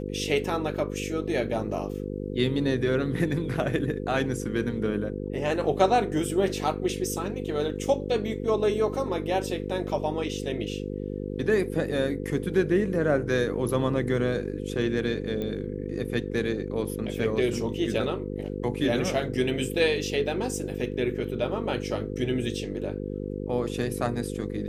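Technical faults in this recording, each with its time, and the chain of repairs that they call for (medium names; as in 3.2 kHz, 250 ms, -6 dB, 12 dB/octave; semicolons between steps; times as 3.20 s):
buzz 50 Hz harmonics 10 -33 dBFS
15.42 s: pop -21 dBFS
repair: de-click; de-hum 50 Hz, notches 10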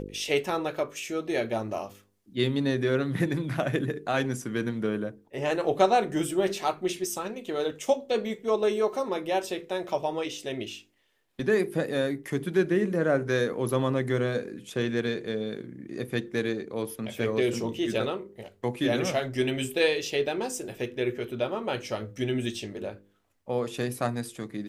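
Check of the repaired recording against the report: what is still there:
nothing left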